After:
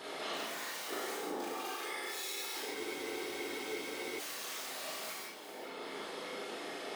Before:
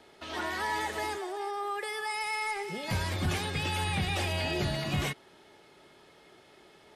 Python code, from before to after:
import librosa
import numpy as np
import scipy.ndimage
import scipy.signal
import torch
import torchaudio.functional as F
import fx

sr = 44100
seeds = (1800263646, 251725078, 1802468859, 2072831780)

y = (np.mod(10.0 ** (28.0 / 20.0) * x + 1.0, 2.0) - 1.0) / 10.0 ** (28.0 / 20.0)
y = fx.dereverb_blind(y, sr, rt60_s=1.2)
y = fx.over_compress(y, sr, threshold_db=-48.0, ratio=-1.0)
y = scipy.signal.sosfilt(scipy.signal.cheby1(3, 1.0, 360.0, 'highpass', fs=sr, output='sos'), y)
y = fx.whisperise(y, sr, seeds[0])
y = fx.doubler(y, sr, ms=37.0, db=-4.0)
y = fx.echo_alternate(y, sr, ms=200, hz=1200.0, feedback_pct=55, wet_db=-7.0)
y = fx.rev_gated(y, sr, seeds[1], gate_ms=210, shape='flat', drr_db=-4.5)
y = fx.spec_freeze(y, sr, seeds[2], at_s=2.76, hold_s=1.43)